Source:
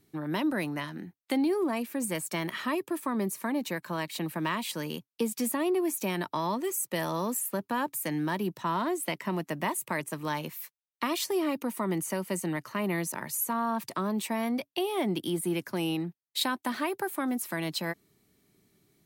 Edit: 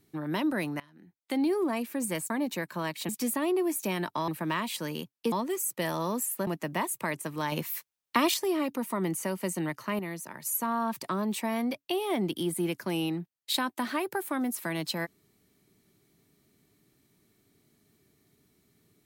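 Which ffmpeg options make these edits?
-filter_complex "[0:a]asplit=11[s0][s1][s2][s3][s4][s5][s6][s7][s8][s9][s10];[s0]atrim=end=0.8,asetpts=PTS-STARTPTS,afade=t=out:st=0.796:d=0.004:c=hsin:silence=0.0891251[s11];[s1]atrim=start=0.8:end=2.302,asetpts=PTS-STARTPTS,afade=t=in:d=0.63:c=qua:silence=0.0891251[s12];[s2]atrim=start=3.438:end=4.232[s13];[s3]atrim=start=5.268:end=6.462[s14];[s4]atrim=start=4.228:end=5.272[s15];[s5]atrim=start=6.458:end=7.612[s16];[s6]atrim=start=9.338:end=10.392[s17];[s7]atrim=start=10.388:end=11.212,asetpts=PTS-STARTPTS,volume=1.88[s18];[s8]atrim=start=11.208:end=12.862[s19];[s9]atrim=start=12.858:end=13.322,asetpts=PTS-STARTPTS,volume=0.473[s20];[s10]atrim=start=13.318[s21];[s11][s12]concat=n=2:v=0:a=1[s22];[s22][s13]acrossfade=d=0.004:c1=hsin:c2=hsin[s23];[s23][s14]acrossfade=d=0.004:c1=hsin:c2=hsin[s24];[s24][s15]acrossfade=d=0.004:c1=hsin:c2=hsin[s25];[s25][s16]acrossfade=d=0.004:c1=hsin:c2=hsin[s26];[s26][s17]acrossfade=d=0.004:c1=hsin:c2=hsin[s27];[s27][s18]acrossfade=d=0.004:c1=hsin:c2=hsin[s28];[s28][s19]acrossfade=d=0.004:c1=hsin:c2=hsin[s29];[s29][s20]acrossfade=d=0.004:c1=hsin:c2=hsin[s30];[s30][s21]acrossfade=d=0.004:c1=hsin:c2=hsin"

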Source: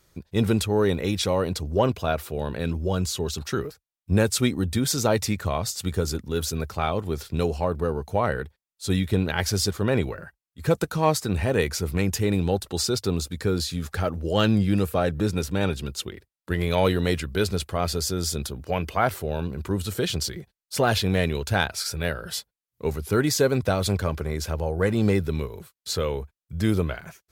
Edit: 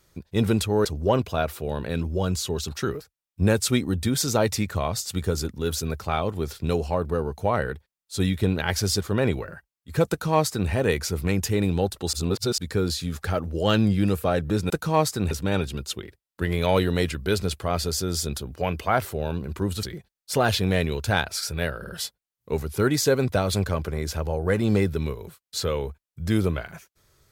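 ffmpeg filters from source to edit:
-filter_complex "[0:a]asplit=9[s0][s1][s2][s3][s4][s5][s6][s7][s8];[s0]atrim=end=0.852[s9];[s1]atrim=start=1.548:end=12.832[s10];[s2]atrim=start=12.828:end=13.282,asetpts=PTS-STARTPTS,areverse[s11];[s3]atrim=start=13.278:end=15.402[s12];[s4]atrim=start=10.788:end=11.402[s13];[s5]atrim=start=15.398:end=19.922[s14];[s6]atrim=start=20.258:end=22.272[s15];[s7]atrim=start=22.218:end=22.272[s16];[s8]atrim=start=22.218[s17];[s9][s10]acrossfade=d=0.004:c1=hsin:c2=hsin[s18];[s18][s11]acrossfade=d=0.004:c1=hsin:c2=hsin[s19];[s19][s12]acrossfade=d=0.004:c1=hsin:c2=hsin[s20];[s20][s13]acrossfade=d=0.004:c1=hsin:c2=hsin[s21];[s21][s14]acrossfade=d=0.004:c1=hsin:c2=hsin[s22];[s22][s15]acrossfade=d=0.004:c1=hsin:c2=hsin[s23];[s23][s16]acrossfade=d=0.004:c1=hsin:c2=hsin[s24];[s24][s17]acrossfade=d=0.004:c1=hsin:c2=hsin"

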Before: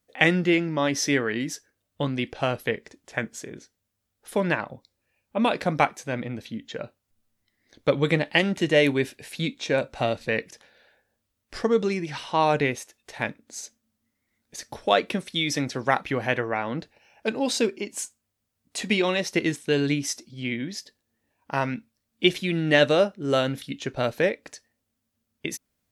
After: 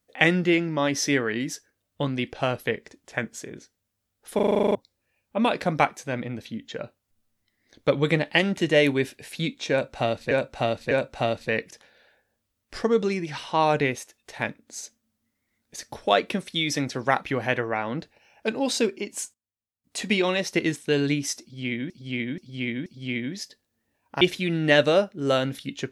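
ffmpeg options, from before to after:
-filter_complex "[0:a]asplit=19[s0][s1][s2][s3][s4][s5][s6][s7][s8][s9][s10][s11][s12][s13][s14][s15][s16][s17][s18];[s0]atrim=end=4.392[s19];[s1]atrim=start=4.348:end=4.392[s20];[s2]atrim=start=4.348:end=4.392[s21];[s3]atrim=start=4.348:end=4.392[s22];[s4]atrim=start=4.348:end=4.392[s23];[s5]atrim=start=4.348:end=4.392[s24];[s6]atrim=start=4.348:end=4.392[s25];[s7]atrim=start=4.348:end=4.392[s26];[s8]atrim=start=4.348:end=4.392[s27];[s9]atrim=start=4.348:end=4.392[s28];[s10]atrim=start=4.748:end=10.312[s29];[s11]atrim=start=9.708:end=10.312[s30];[s12]atrim=start=9.708:end=18.14,asetpts=PTS-STARTPTS,afade=t=out:st=8.252:d=0.18:c=log:silence=0.125893[s31];[s13]atrim=start=18.14:end=18.64,asetpts=PTS-STARTPTS,volume=0.126[s32];[s14]atrim=start=18.64:end=20.702,asetpts=PTS-STARTPTS,afade=t=in:d=0.18:c=log:silence=0.125893[s33];[s15]atrim=start=20.218:end=20.702[s34];[s16]atrim=start=20.218:end=20.702[s35];[s17]atrim=start=20.218:end=21.572[s36];[s18]atrim=start=22.238[s37];[s19][s20]acrossfade=d=0.004:c1=hsin:c2=hsin[s38];[s38][s21]acrossfade=d=0.004:c1=hsin:c2=hsin[s39];[s39][s22]acrossfade=d=0.004:c1=hsin:c2=hsin[s40];[s40][s23]acrossfade=d=0.004:c1=hsin:c2=hsin[s41];[s41][s24]acrossfade=d=0.004:c1=hsin:c2=hsin[s42];[s42][s25]acrossfade=d=0.004:c1=hsin:c2=hsin[s43];[s43][s26]acrossfade=d=0.004:c1=hsin:c2=hsin[s44];[s44][s27]acrossfade=d=0.004:c1=hsin:c2=hsin[s45];[s45][s28]acrossfade=d=0.004:c1=hsin:c2=hsin[s46];[s46][s29]acrossfade=d=0.004:c1=hsin:c2=hsin[s47];[s47][s30]acrossfade=d=0.004:c1=hsin:c2=hsin[s48];[s31][s32][s33]concat=n=3:v=0:a=1[s49];[s48][s49]acrossfade=d=0.004:c1=hsin:c2=hsin[s50];[s50][s34]acrossfade=d=0.004:c1=hsin:c2=hsin[s51];[s51][s35]acrossfade=d=0.004:c1=hsin:c2=hsin[s52];[s52][s36]acrossfade=d=0.004:c1=hsin:c2=hsin[s53];[s53][s37]acrossfade=d=0.004:c1=hsin:c2=hsin"

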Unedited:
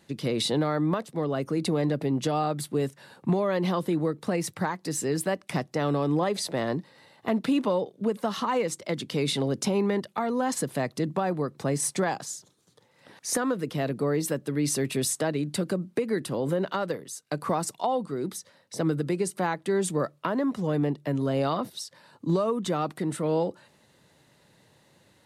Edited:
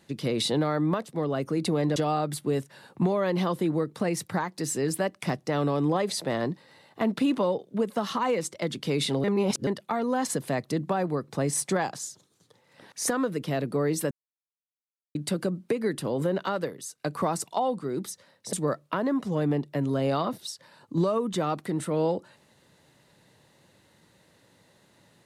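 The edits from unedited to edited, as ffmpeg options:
-filter_complex "[0:a]asplit=7[s0][s1][s2][s3][s4][s5][s6];[s0]atrim=end=1.962[s7];[s1]atrim=start=2.228:end=9.512[s8];[s2]atrim=start=9.508:end=9.942,asetpts=PTS-STARTPTS,areverse[s9];[s3]atrim=start=9.938:end=14.38,asetpts=PTS-STARTPTS,afade=t=out:st=4.438:d=0.004:c=hsin[s10];[s4]atrim=start=14.38:end=15.42,asetpts=PTS-STARTPTS,volume=0[s11];[s5]atrim=start=15.42:end=18.802,asetpts=PTS-STARTPTS,afade=t=in:d=0.004:c=hsin[s12];[s6]atrim=start=19.848[s13];[s7][s8]acrossfade=d=0.004:c1=hsin:c2=hsin[s14];[s14][s9]acrossfade=d=0.004:c1=hsin:c2=hsin[s15];[s10][s11][s12]concat=n=3:v=0:a=1[s16];[s15][s16]acrossfade=d=0.004:c1=hsin:c2=hsin[s17];[s17][s13]acrossfade=d=0.004:c1=hsin:c2=hsin"

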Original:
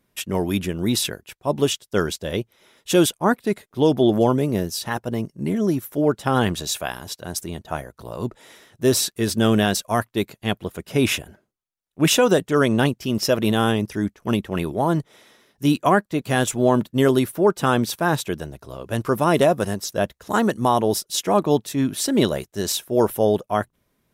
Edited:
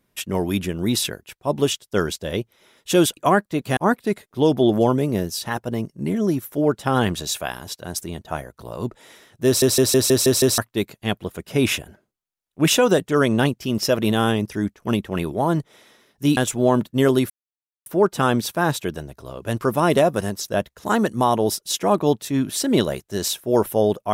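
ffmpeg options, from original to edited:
-filter_complex "[0:a]asplit=12[s0][s1][s2][s3][s4][s5][s6][s7][s8][s9][s10][s11];[s0]atrim=end=3.172[s12];[s1]atrim=start=15.768:end=16.372[s13];[s2]atrim=start=3.168:end=9.022[s14];[s3]atrim=start=8.858:end=9.022[s15];[s4]atrim=start=8.858:end=9.022[s16];[s5]atrim=start=8.858:end=9.022[s17];[s6]atrim=start=8.858:end=9.022[s18];[s7]atrim=start=8.858:end=9.022[s19];[s8]atrim=start=8.858:end=9.022[s20];[s9]atrim=start=9.978:end=15.772[s21];[s10]atrim=start=16.368:end=17.3,asetpts=PTS-STARTPTS,afade=t=out:st=0.928:d=0.004:c=hsin,apad=pad_dur=0.56[s22];[s11]atrim=start=17.3,asetpts=PTS-STARTPTS,afade=t=in:d=0.004:c=hsin[s23];[s12][s13]acrossfade=d=0.004:c1=hsin:c2=hsin[s24];[s24][s14]acrossfade=d=0.004:c1=hsin:c2=hsin[s25];[s25][s15]acrossfade=d=0.004:c1=hsin:c2=hsin[s26];[s26][s16]acrossfade=d=0.004:c1=hsin:c2=hsin[s27];[s27][s17]acrossfade=d=0.004:c1=hsin:c2=hsin[s28];[s28][s18]acrossfade=d=0.004:c1=hsin:c2=hsin[s29];[s29][s19]acrossfade=d=0.004:c1=hsin:c2=hsin[s30];[s30][s20]acrossfade=d=0.004:c1=hsin:c2=hsin[s31];[s31][s21]acrossfade=d=0.004:c1=hsin:c2=hsin[s32];[s22][s23]concat=n=2:v=0:a=1[s33];[s32][s33]acrossfade=d=0.004:c1=hsin:c2=hsin"

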